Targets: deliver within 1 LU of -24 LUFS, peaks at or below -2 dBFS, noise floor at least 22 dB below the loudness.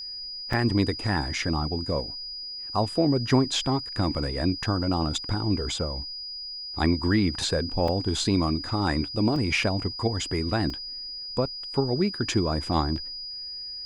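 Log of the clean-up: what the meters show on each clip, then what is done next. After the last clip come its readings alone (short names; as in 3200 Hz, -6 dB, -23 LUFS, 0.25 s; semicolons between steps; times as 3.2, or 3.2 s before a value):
dropouts 5; longest dropout 2.9 ms; steady tone 4900 Hz; tone level -34 dBFS; loudness -26.5 LUFS; peak -9.5 dBFS; loudness target -24.0 LUFS
-> interpolate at 0.53/7.88/9.36/10.7/12.96, 2.9 ms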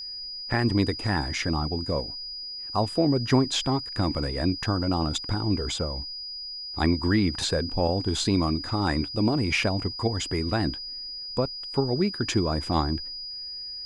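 dropouts 0; steady tone 4900 Hz; tone level -34 dBFS
-> notch 4900 Hz, Q 30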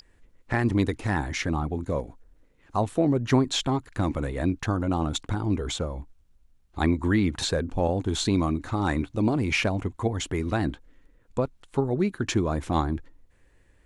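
steady tone none; loudness -27.0 LUFS; peak -10.0 dBFS; loudness target -24.0 LUFS
-> gain +3 dB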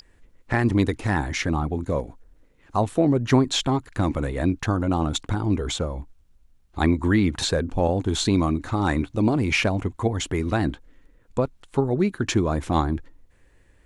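loudness -24.0 LUFS; peak -7.0 dBFS; noise floor -58 dBFS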